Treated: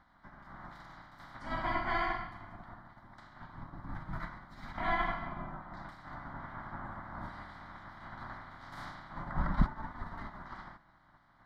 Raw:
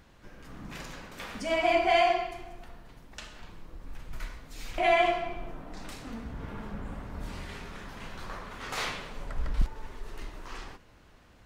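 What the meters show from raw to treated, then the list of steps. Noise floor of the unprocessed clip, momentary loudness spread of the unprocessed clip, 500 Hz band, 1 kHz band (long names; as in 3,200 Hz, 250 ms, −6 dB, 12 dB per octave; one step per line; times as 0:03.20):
−57 dBFS, 23 LU, −15.0 dB, −6.5 dB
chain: ceiling on every frequency bin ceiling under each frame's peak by 23 dB
phaser with its sweep stopped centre 1,100 Hz, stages 4
hollow resonant body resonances 2,000/3,900 Hz, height 7 dB
flanger 0.2 Hz, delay 3.9 ms, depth 6.3 ms, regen −50%
high-frequency loss of the air 420 metres
level +2.5 dB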